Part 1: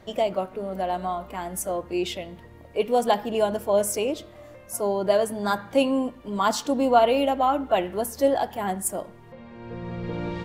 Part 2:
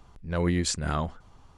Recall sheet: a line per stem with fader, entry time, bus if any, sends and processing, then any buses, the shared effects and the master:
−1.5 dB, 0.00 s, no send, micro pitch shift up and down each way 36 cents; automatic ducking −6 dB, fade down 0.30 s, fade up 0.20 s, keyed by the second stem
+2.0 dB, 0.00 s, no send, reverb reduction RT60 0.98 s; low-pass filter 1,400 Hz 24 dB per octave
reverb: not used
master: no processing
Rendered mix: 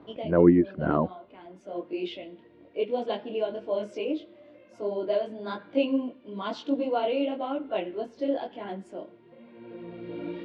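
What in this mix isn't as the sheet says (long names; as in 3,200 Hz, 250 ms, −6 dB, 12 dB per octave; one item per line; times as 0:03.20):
stem 2 +2.0 dB → +10.5 dB
master: extra loudspeaker in its box 230–3,700 Hz, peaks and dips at 310 Hz +8 dB, 820 Hz −9 dB, 1,200 Hz −9 dB, 1,800 Hz −6 dB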